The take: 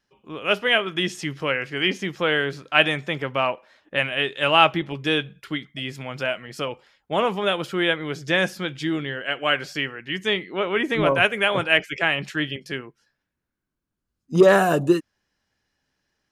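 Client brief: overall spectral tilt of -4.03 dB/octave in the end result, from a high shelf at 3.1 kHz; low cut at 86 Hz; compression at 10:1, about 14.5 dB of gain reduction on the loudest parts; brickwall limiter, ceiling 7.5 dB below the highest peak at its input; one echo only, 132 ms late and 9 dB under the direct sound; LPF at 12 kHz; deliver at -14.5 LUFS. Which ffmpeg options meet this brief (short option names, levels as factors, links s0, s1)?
-af "highpass=86,lowpass=12000,highshelf=f=3100:g=5.5,acompressor=threshold=0.0631:ratio=10,alimiter=limit=0.126:level=0:latency=1,aecho=1:1:132:0.355,volume=5.96"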